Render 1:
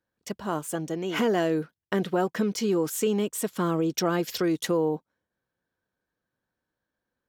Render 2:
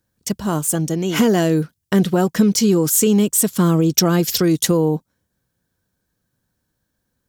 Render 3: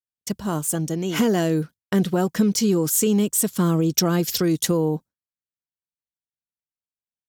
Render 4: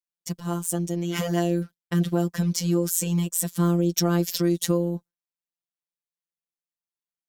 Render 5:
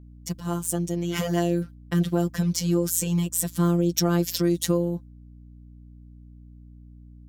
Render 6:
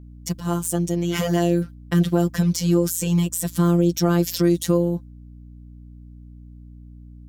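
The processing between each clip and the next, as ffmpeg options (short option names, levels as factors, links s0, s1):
-af "bass=f=250:g=12,treble=f=4000:g=12,volume=1.78"
-af "agate=range=0.0224:threshold=0.0447:ratio=3:detection=peak,volume=0.596"
-af "afftfilt=real='hypot(re,im)*cos(PI*b)':imag='0':win_size=1024:overlap=0.75,volume=0.891"
-af "aeval=exprs='val(0)+0.00562*(sin(2*PI*60*n/s)+sin(2*PI*2*60*n/s)/2+sin(2*PI*3*60*n/s)/3+sin(2*PI*4*60*n/s)/4+sin(2*PI*5*60*n/s)/5)':c=same"
-af "alimiter=level_in=3.16:limit=0.891:release=50:level=0:latency=1,volume=0.531"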